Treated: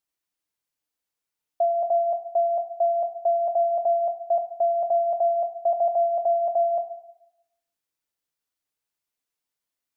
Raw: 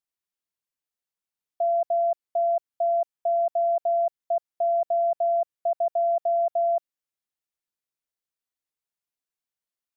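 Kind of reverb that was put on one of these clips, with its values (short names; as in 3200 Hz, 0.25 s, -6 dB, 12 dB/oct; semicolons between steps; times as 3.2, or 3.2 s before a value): FDN reverb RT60 0.85 s, low-frequency decay 0.8×, high-frequency decay 0.9×, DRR 5 dB; gain +3.5 dB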